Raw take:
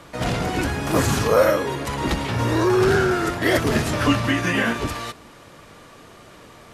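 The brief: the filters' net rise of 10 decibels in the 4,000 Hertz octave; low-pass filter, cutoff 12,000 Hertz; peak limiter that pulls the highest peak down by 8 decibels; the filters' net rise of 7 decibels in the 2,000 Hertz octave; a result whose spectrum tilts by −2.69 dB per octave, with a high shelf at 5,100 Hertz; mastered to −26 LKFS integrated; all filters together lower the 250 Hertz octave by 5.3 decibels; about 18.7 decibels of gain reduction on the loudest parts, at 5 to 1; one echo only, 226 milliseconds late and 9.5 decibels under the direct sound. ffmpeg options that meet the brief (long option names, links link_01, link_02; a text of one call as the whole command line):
ffmpeg -i in.wav -af "lowpass=12000,equalizer=frequency=250:width_type=o:gain=-8,equalizer=frequency=2000:width_type=o:gain=6,equalizer=frequency=4000:width_type=o:gain=7.5,highshelf=frequency=5100:gain=8.5,acompressor=threshold=-33dB:ratio=5,alimiter=level_in=4dB:limit=-24dB:level=0:latency=1,volume=-4dB,aecho=1:1:226:0.335,volume=10.5dB" out.wav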